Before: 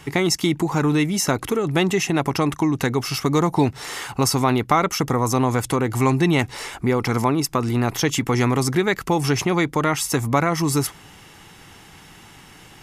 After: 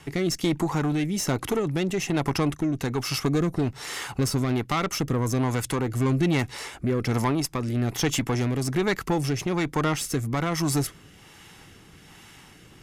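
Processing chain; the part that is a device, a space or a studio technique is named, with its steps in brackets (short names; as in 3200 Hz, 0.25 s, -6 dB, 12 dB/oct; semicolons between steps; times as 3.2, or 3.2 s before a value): overdriven rotary cabinet (tube stage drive 16 dB, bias 0.45; rotary speaker horn 1.2 Hz)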